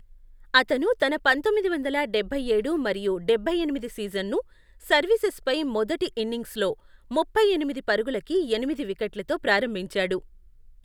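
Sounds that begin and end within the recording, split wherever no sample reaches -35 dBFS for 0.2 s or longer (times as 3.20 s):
0.54–4.41 s
4.86–6.73 s
7.11–10.19 s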